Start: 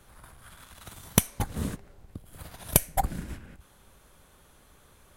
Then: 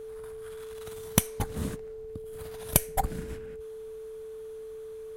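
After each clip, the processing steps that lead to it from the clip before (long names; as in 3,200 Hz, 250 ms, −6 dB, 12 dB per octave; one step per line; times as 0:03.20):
steady tone 440 Hz −37 dBFS
level −1.5 dB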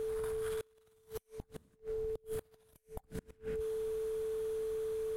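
downward compressor 16 to 1, threshold −36 dBFS, peak gain reduction 22 dB
gate with flip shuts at −33 dBFS, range −31 dB
level +4.5 dB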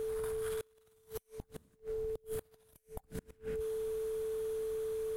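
high-shelf EQ 8,600 Hz +5 dB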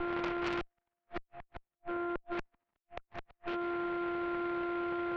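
single-sideband voice off tune −93 Hz 430–2,600 Hz
harmonic generator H 3 −11 dB, 4 −16 dB, 6 −10 dB, 7 −34 dB, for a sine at −32.5 dBFS
level +9 dB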